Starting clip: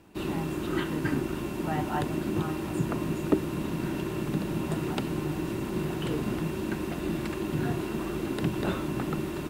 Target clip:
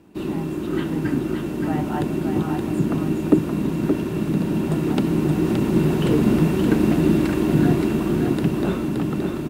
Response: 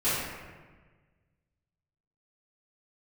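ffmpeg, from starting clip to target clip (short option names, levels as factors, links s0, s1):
-af "equalizer=f=250:w=0.64:g=8,dynaudnorm=f=320:g=11:m=2.66,aecho=1:1:572:0.562,volume=0.891"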